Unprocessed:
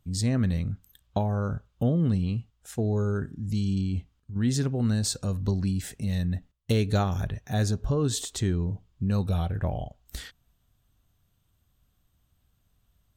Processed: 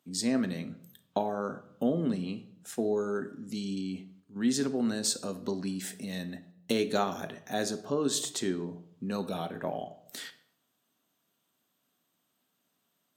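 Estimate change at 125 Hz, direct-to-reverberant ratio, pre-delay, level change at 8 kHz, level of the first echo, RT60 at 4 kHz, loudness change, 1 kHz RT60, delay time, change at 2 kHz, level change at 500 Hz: -16.0 dB, 10.0 dB, 3 ms, +0.5 dB, no echo, 0.50 s, -4.5 dB, 0.70 s, no echo, 0.0 dB, +0.5 dB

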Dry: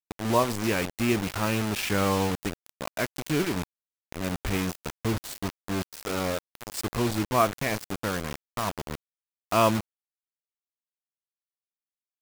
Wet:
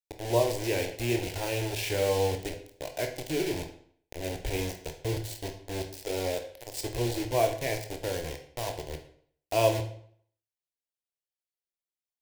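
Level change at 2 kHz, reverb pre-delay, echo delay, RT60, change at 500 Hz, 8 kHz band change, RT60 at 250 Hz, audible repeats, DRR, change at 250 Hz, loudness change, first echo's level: -5.5 dB, 20 ms, no echo, 0.60 s, +0.5 dB, -2.5 dB, 0.60 s, no echo, 5.0 dB, -7.0 dB, -3.0 dB, no echo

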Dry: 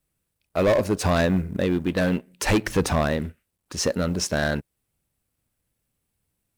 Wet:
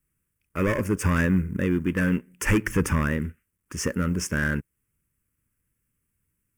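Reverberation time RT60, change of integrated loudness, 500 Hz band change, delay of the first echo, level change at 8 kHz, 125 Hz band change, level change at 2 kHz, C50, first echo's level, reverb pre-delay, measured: no reverb, -1.5 dB, -7.0 dB, no echo, -3.0 dB, +1.0 dB, +1.0 dB, no reverb, no echo, no reverb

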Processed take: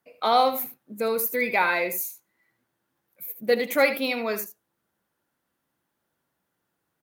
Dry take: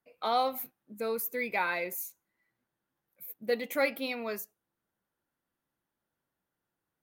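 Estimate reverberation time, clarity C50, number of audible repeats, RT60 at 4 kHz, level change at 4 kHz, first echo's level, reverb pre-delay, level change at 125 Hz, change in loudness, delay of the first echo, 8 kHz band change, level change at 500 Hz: no reverb, no reverb, 1, no reverb, +8.5 dB, -11.0 dB, no reverb, no reading, +8.0 dB, 77 ms, +8.5 dB, +8.0 dB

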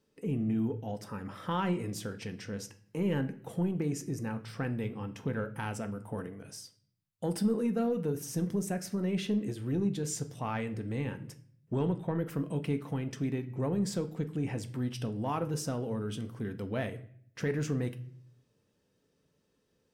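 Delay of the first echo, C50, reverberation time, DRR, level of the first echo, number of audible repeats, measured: no echo, 15.5 dB, 0.60 s, 8.0 dB, no echo, no echo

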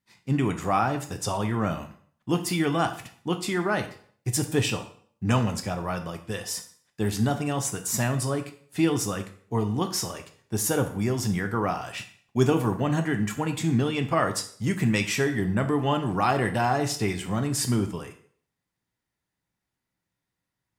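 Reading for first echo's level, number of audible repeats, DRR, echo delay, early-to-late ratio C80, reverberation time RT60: no echo, no echo, 5.5 dB, no echo, 15.0 dB, 0.55 s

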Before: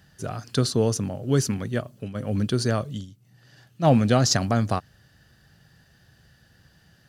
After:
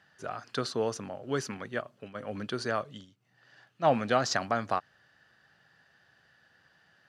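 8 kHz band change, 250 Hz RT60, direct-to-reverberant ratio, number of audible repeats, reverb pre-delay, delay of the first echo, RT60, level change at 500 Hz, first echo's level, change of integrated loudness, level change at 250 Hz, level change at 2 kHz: -12.0 dB, no reverb, no reverb, no echo, no reverb, no echo, no reverb, -5.0 dB, no echo, -8.0 dB, -12.0 dB, -0.5 dB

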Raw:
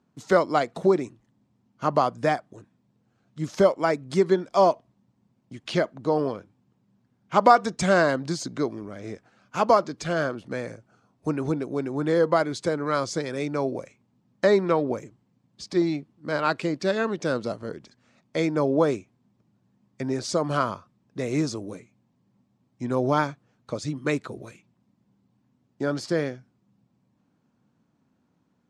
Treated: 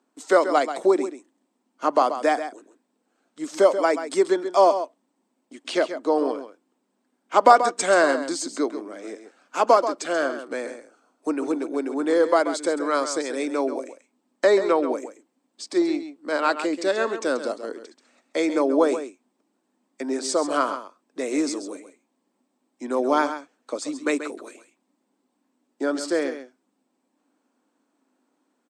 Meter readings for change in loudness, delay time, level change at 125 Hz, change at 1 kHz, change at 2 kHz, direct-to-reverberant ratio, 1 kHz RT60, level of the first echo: +2.0 dB, 134 ms, under -20 dB, +2.5 dB, +2.5 dB, no reverb, no reverb, -10.5 dB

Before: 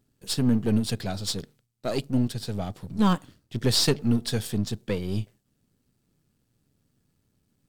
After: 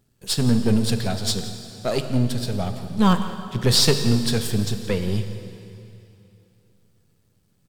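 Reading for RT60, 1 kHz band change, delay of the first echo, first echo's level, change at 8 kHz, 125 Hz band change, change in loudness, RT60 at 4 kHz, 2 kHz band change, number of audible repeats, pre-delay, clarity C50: 2.9 s, +5.5 dB, 173 ms, -16.5 dB, +5.5 dB, +5.5 dB, +4.5 dB, 2.7 s, +6.0 dB, 1, 4 ms, 8.0 dB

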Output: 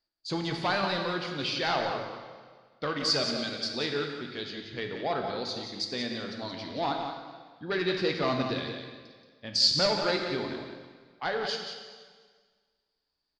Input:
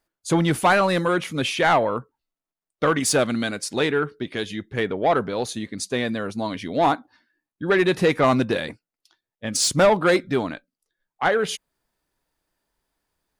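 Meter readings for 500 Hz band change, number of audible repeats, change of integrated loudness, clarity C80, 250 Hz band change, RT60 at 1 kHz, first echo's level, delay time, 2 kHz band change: -10.0 dB, 1, -8.0 dB, 4.0 dB, -10.0 dB, 1.6 s, -8.0 dB, 178 ms, -9.0 dB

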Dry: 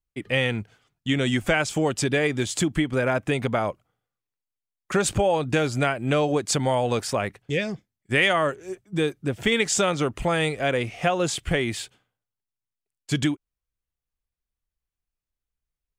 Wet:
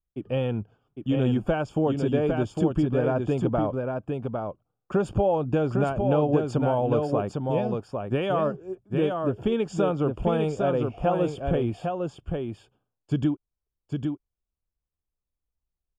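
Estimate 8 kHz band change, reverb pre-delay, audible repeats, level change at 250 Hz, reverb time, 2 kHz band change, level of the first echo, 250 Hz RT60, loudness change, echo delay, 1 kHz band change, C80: under -20 dB, no reverb, 1, +1.0 dB, no reverb, -14.0 dB, -4.5 dB, no reverb, -2.0 dB, 805 ms, -2.0 dB, no reverb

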